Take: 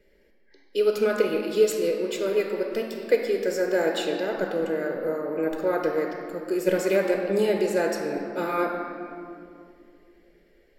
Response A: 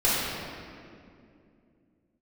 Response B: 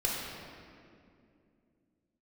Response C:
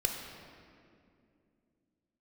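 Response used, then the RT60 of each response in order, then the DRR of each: C; 2.5, 2.5, 2.5 seconds; −11.0, −5.0, 1.5 decibels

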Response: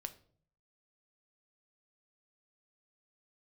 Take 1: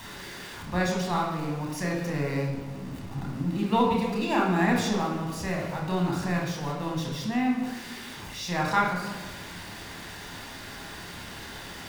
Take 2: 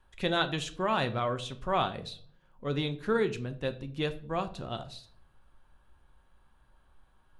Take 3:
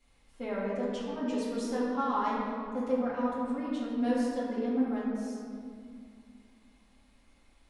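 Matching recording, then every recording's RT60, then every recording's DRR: 2; 1.3, 0.55, 2.2 seconds; −1.5, 8.0, −9.5 decibels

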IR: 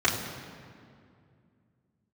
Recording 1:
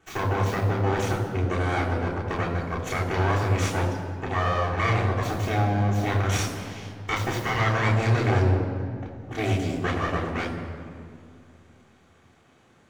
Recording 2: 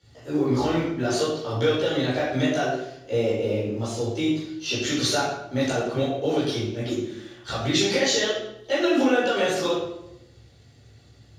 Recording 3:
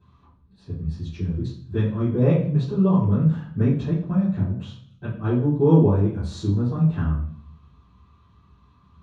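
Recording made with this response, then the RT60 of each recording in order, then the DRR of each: 1; 2.3, 0.85, 0.55 seconds; −7.5, −12.0, −15.5 decibels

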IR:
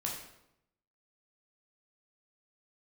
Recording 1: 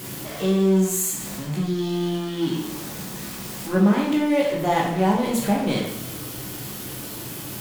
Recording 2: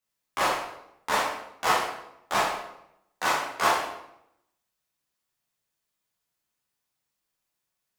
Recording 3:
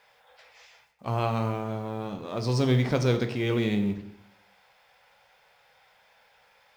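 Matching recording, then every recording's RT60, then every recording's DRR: 1; 0.80, 0.80, 0.80 seconds; −2.5, −7.5, 6.5 decibels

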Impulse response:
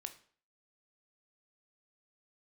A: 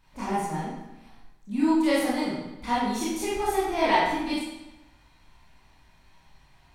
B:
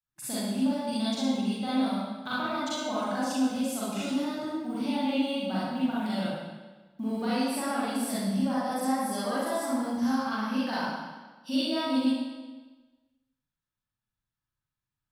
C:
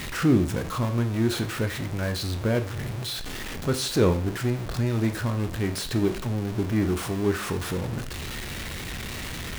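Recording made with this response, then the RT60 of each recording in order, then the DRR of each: C; 0.95, 1.3, 0.50 seconds; −9.5, −10.0, 7.0 decibels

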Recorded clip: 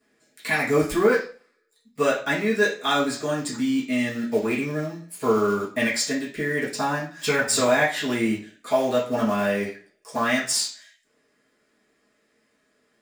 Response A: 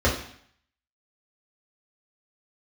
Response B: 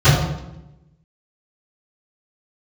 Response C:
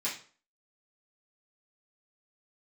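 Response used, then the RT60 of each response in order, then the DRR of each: C; 0.60, 0.90, 0.40 seconds; −6.5, −24.0, −9.5 decibels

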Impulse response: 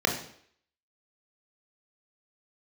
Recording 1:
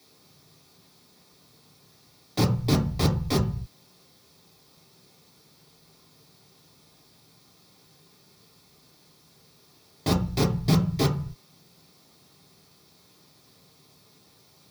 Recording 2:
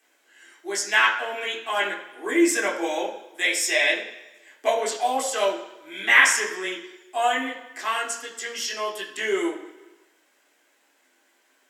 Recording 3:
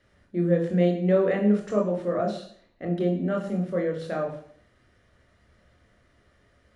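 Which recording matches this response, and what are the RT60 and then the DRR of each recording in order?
3; 0.45, 1.1, 0.60 seconds; −1.5, −4.0, 0.5 decibels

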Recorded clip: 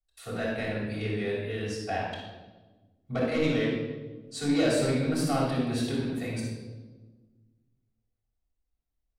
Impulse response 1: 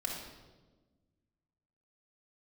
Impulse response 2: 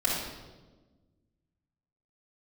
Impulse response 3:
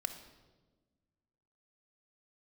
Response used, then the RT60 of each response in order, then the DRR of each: 2; 1.3, 1.3, 1.3 seconds; −3.0, −8.5, 6.5 decibels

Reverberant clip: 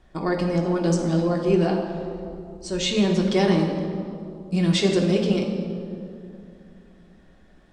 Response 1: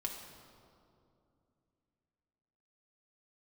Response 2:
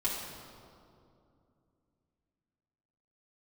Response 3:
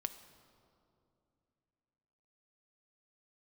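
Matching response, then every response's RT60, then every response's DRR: 1; 2.6, 2.6, 2.7 seconds; −0.5, −8.0, 8.5 decibels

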